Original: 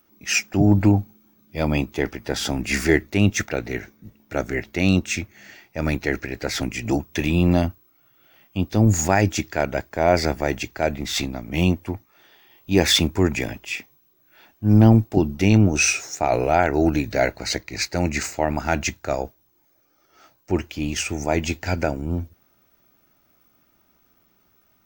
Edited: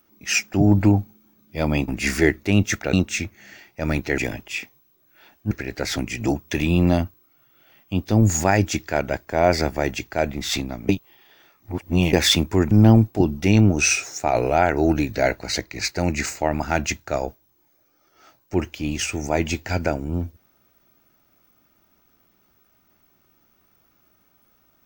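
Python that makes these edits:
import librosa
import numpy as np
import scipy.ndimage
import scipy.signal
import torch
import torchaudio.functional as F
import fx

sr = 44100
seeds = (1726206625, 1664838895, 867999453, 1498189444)

y = fx.edit(x, sr, fx.cut(start_s=1.88, length_s=0.67),
    fx.cut(start_s=3.6, length_s=1.3),
    fx.reverse_span(start_s=11.53, length_s=1.24),
    fx.move(start_s=13.35, length_s=1.33, to_s=6.15), tone=tone)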